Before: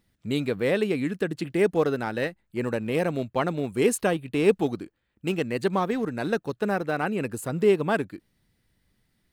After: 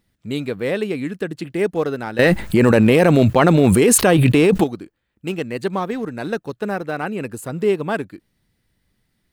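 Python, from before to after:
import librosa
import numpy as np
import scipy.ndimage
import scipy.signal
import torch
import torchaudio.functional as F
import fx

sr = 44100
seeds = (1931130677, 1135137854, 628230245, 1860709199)

y = fx.env_flatten(x, sr, amount_pct=100, at=(2.19, 4.64))
y = y * librosa.db_to_amplitude(2.0)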